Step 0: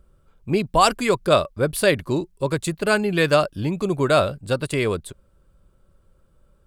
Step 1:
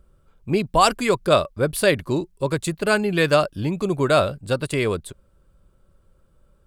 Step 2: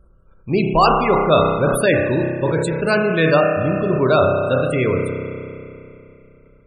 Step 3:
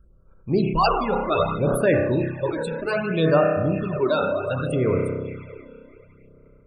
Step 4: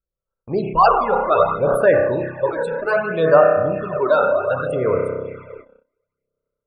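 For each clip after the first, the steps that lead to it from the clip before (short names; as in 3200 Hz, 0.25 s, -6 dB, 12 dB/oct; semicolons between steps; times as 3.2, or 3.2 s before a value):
nothing audible
spring tank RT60 2.8 s, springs 31 ms, chirp 70 ms, DRR 1.5 dB; loudest bins only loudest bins 64; sustainer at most 43 dB/s; gain +1.5 dB
phaser stages 12, 0.65 Hz, lowest notch 110–4500 Hz; gain -3.5 dB
gate -40 dBFS, range -30 dB; band shelf 890 Hz +11.5 dB 2.3 oct; gain -4.5 dB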